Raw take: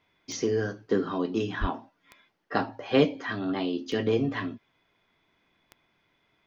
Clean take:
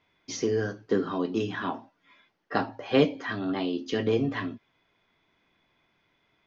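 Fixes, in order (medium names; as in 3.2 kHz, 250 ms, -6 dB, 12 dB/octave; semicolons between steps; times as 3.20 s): de-click; de-plosive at 1.60 s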